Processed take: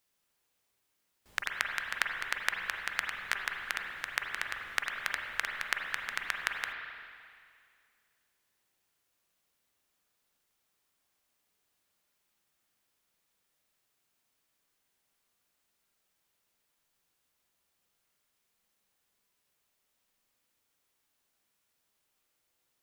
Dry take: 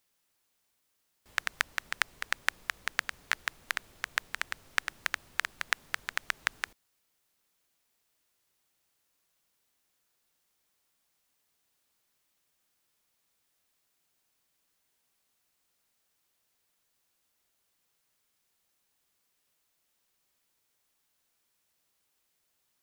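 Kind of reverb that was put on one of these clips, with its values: spring tank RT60 2.2 s, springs 38/43/48 ms, chirp 65 ms, DRR 1.5 dB; trim -2.5 dB

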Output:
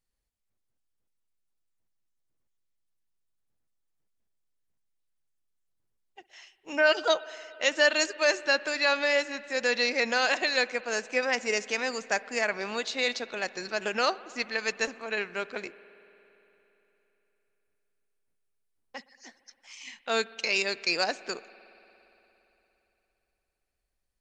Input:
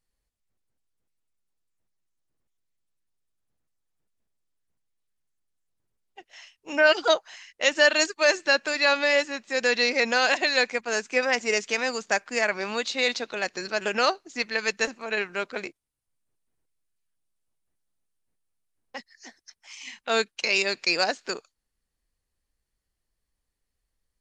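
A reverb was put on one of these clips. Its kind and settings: spring tank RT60 3.5 s, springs 57 ms, chirp 70 ms, DRR 17.5 dB; trim -3.5 dB

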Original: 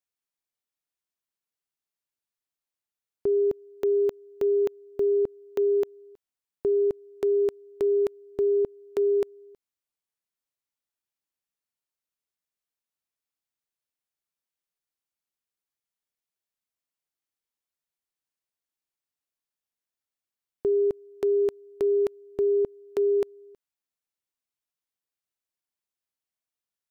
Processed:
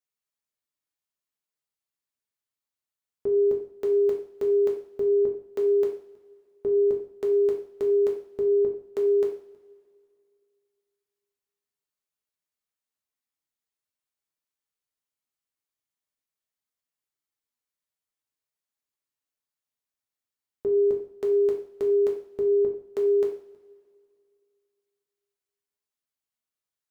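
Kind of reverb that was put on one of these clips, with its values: two-slope reverb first 0.49 s, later 2.4 s, from -22 dB, DRR -0.5 dB; trim -4 dB

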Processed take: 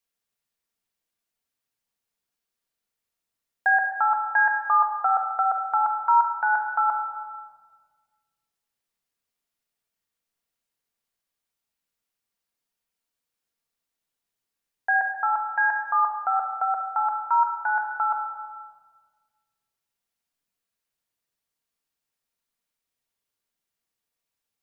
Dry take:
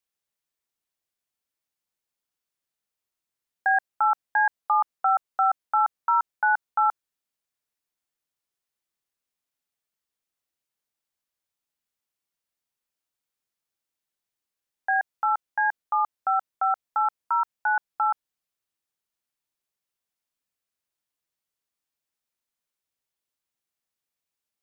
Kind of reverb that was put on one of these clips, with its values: simulated room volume 1800 m³, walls mixed, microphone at 1.7 m

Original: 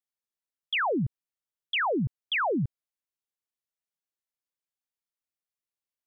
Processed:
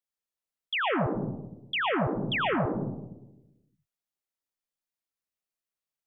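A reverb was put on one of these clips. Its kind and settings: algorithmic reverb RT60 0.97 s, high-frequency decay 0.25×, pre-delay 70 ms, DRR 1.5 dB; trim -2 dB

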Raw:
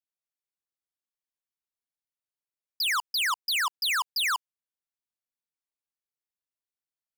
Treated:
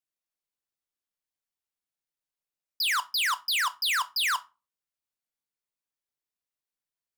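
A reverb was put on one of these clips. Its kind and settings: simulated room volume 140 m³, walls furnished, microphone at 0.42 m

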